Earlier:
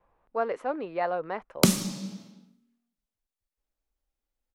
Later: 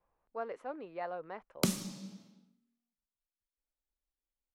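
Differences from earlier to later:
speech -11.0 dB; background -10.0 dB

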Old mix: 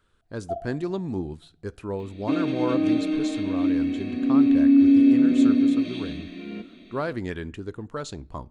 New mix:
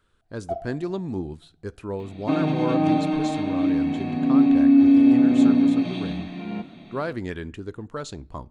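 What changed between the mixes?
first sound: remove double band-pass 1500 Hz, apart 2.2 oct; second sound: remove fixed phaser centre 350 Hz, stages 4

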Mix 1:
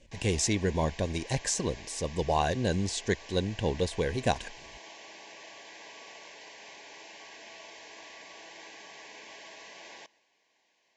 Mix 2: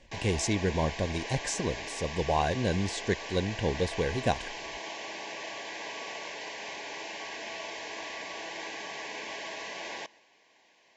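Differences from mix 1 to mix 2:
background +10.0 dB; master: add high shelf 4700 Hz -6 dB

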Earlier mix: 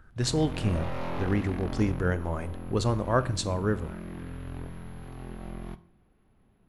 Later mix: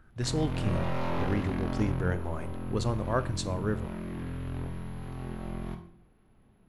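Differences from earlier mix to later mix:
speech -4.0 dB; background: send +10.0 dB

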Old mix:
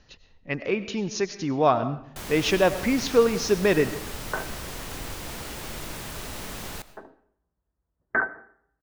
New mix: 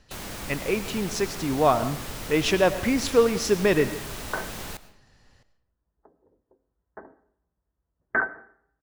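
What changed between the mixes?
speech: remove brick-wall FIR low-pass 7000 Hz; first sound: entry -2.05 s

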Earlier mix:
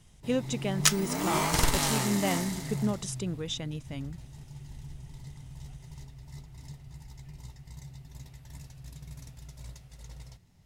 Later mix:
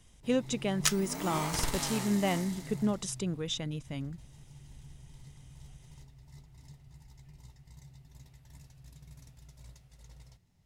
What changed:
first sound -7.5 dB; second sound -5.0 dB

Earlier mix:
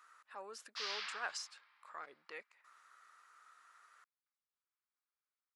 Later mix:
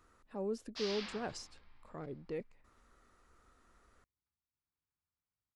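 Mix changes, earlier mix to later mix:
speech -3.5 dB; master: remove resonant high-pass 1300 Hz, resonance Q 1.7

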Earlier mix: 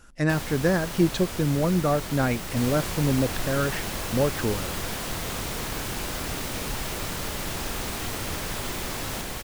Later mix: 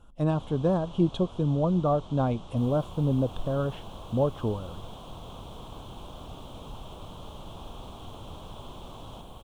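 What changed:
first sound: add ladder low-pass 7400 Hz, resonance 35%; second sound -9.0 dB; master: add EQ curve 110 Hz 0 dB, 380 Hz -4 dB, 660 Hz 0 dB, 1100 Hz 0 dB, 1900 Hz -27 dB, 3300 Hz -1 dB, 4800 Hz -22 dB, 8800 Hz -14 dB, 13000 Hz -18 dB

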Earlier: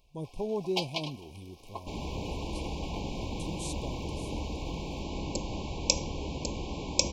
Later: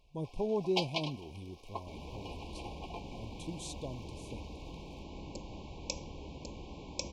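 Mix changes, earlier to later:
second sound -10.0 dB; master: add high shelf 8200 Hz -11.5 dB

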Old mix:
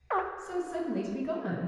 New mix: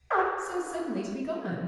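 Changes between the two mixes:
background: send +8.0 dB; master: remove LPF 2800 Hz 6 dB/oct

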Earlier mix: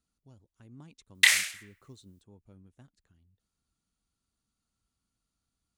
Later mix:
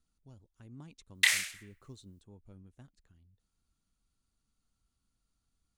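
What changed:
background -5.0 dB; master: remove HPF 75 Hz 6 dB/oct

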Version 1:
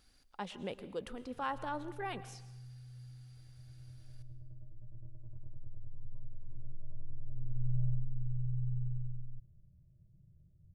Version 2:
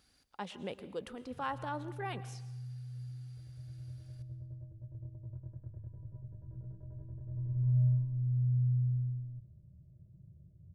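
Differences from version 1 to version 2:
background +7.5 dB; master: add HPF 61 Hz 12 dB/oct

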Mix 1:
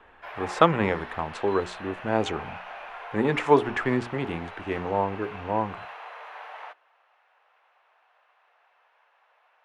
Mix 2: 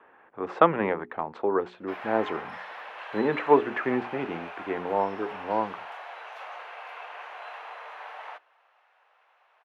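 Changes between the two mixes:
speech: add BPF 230–2000 Hz; background: entry +1.65 s

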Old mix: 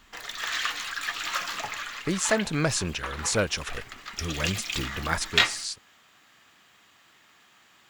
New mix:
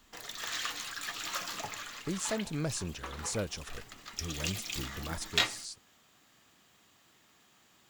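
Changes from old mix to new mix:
speech -6.5 dB; master: add bell 1800 Hz -9.5 dB 2.6 oct

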